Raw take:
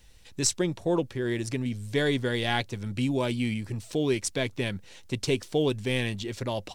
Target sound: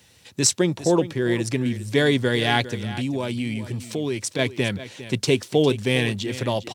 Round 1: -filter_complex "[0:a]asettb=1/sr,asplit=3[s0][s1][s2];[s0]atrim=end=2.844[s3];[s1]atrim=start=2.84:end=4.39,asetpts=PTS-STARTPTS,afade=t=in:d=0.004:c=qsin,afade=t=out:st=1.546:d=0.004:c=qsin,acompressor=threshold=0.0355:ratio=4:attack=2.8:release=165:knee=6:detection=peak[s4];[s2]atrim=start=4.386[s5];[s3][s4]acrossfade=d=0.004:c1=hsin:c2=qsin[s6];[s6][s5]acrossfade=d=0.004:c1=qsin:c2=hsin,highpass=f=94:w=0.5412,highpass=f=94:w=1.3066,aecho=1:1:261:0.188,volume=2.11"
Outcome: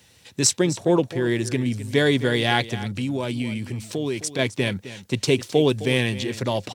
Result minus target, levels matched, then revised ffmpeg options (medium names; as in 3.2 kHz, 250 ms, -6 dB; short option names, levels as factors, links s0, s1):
echo 143 ms early
-filter_complex "[0:a]asettb=1/sr,asplit=3[s0][s1][s2];[s0]atrim=end=2.844[s3];[s1]atrim=start=2.84:end=4.39,asetpts=PTS-STARTPTS,afade=t=in:d=0.004:c=qsin,afade=t=out:st=1.546:d=0.004:c=qsin,acompressor=threshold=0.0355:ratio=4:attack=2.8:release=165:knee=6:detection=peak[s4];[s2]atrim=start=4.386[s5];[s3][s4]acrossfade=d=0.004:c1=hsin:c2=qsin[s6];[s6][s5]acrossfade=d=0.004:c1=qsin:c2=hsin,highpass=f=94:w=0.5412,highpass=f=94:w=1.3066,aecho=1:1:404:0.188,volume=2.11"